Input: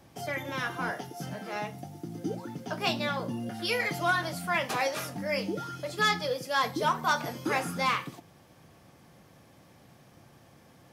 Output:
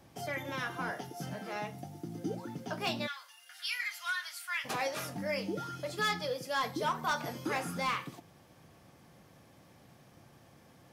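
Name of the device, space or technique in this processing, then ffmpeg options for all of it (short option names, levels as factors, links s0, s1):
clipper into limiter: -filter_complex "[0:a]asplit=3[s0][s1][s2];[s0]afade=t=out:st=3.06:d=0.02[s3];[s1]highpass=f=1400:w=0.5412,highpass=f=1400:w=1.3066,afade=t=in:st=3.06:d=0.02,afade=t=out:st=4.64:d=0.02[s4];[s2]afade=t=in:st=4.64:d=0.02[s5];[s3][s4][s5]amix=inputs=3:normalize=0,asoftclip=type=hard:threshold=0.0944,alimiter=limit=0.0708:level=0:latency=1:release=213,volume=0.75"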